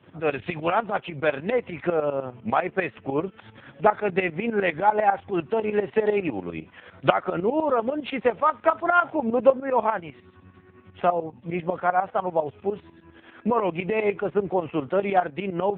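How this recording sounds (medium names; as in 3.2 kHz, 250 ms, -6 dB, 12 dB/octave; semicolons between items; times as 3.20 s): tremolo saw up 10 Hz, depth 80%; AMR-NB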